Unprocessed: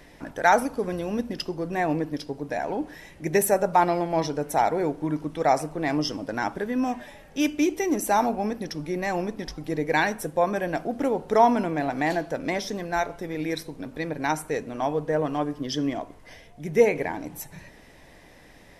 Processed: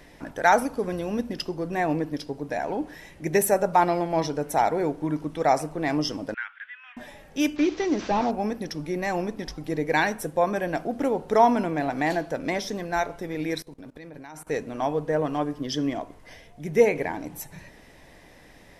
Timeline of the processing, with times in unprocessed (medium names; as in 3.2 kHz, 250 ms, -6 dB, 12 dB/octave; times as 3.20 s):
6.34–6.97 s: elliptic band-pass 1.4–3.2 kHz, stop band 80 dB
7.56–8.31 s: one-bit delta coder 32 kbps, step -36.5 dBFS
13.62–14.47 s: level held to a coarse grid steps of 21 dB